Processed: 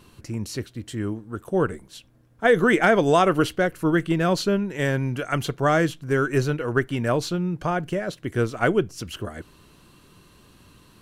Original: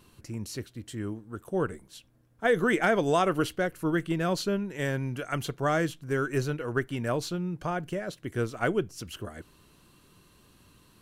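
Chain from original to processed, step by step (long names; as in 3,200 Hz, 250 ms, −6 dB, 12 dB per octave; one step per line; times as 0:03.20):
high-shelf EQ 7,900 Hz −5 dB
level +6.5 dB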